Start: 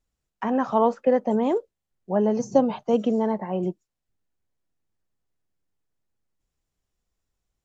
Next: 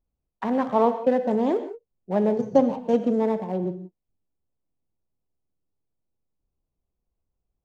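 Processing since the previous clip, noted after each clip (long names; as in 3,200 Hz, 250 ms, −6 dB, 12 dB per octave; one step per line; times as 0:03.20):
adaptive Wiener filter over 25 samples
reverb whose tail is shaped and stops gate 200 ms flat, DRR 9 dB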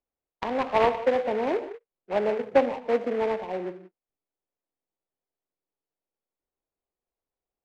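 three-way crossover with the lows and the highs turned down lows −19 dB, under 330 Hz, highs −22 dB, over 3,100 Hz
short delay modulated by noise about 1,300 Hz, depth 0.055 ms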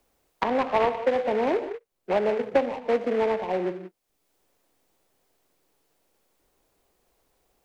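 multiband upward and downward compressor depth 70%
level +1 dB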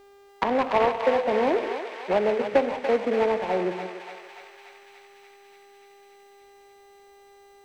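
hum with harmonics 400 Hz, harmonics 21, −54 dBFS −8 dB per octave
on a send: feedback echo with a high-pass in the loop 289 ms, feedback 78%, high-pass 940 Hz, level −5 dB
on the sum: level +1 dB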